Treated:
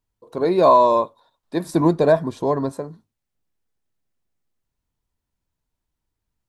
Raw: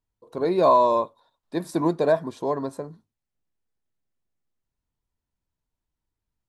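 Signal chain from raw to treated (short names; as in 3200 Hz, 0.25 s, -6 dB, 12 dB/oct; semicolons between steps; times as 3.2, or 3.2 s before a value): 1.67–2.72 low shelf 130 Hz +12 dB; gain +4 dB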